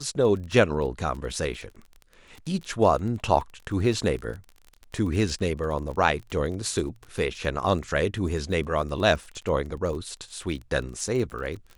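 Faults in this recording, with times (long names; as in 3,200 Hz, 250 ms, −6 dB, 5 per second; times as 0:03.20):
surface crackle 29 per second −34 dBFS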